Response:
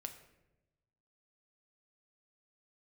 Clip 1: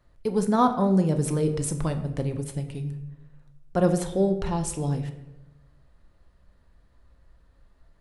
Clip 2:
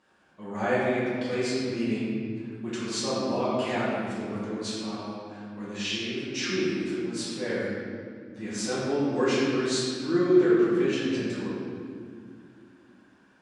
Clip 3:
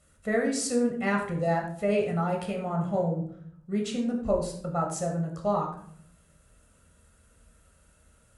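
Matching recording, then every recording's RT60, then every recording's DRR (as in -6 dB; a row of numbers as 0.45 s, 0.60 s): 1; 0.95 s, 2.1 s, 0.60 s; 6.0 dB, -10.5 dB, 0.5 dB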